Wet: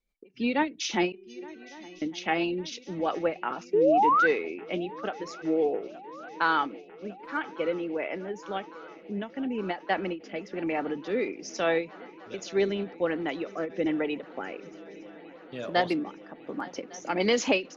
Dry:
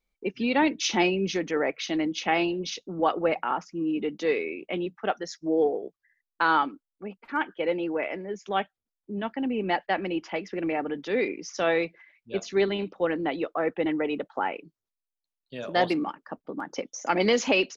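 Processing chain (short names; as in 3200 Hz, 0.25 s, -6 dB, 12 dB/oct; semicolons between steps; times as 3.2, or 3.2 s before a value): rotary speaker horn 6 Hz, later 1.2 Hz, at 3.64; 1.12–2.02 metallic resonator 360 Hz, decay 0.65 s, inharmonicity 0.008; 3.73–4.27 painted sound rise 390–1600 Hz -21 dBFS; swung echo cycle 1.154 s, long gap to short 3:1, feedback 76%, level -22.5 dB; ending taper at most 220 dB/s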